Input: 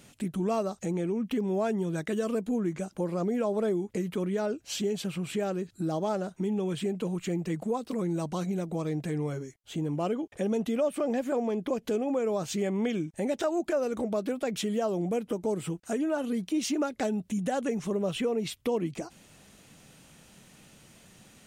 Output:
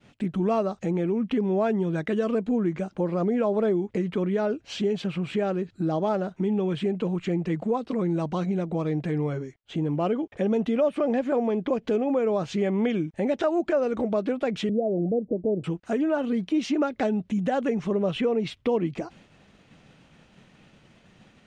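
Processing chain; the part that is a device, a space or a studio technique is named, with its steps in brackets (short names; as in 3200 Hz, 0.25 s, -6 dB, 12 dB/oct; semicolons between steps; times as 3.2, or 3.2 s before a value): 14.69–15.64 steep low-pass 670 Hz 48 dB/oct; hearing-loss simulation (LPF 3300 Hz 12 dB/oct; expander -52 dBFS); gain +4.5 dB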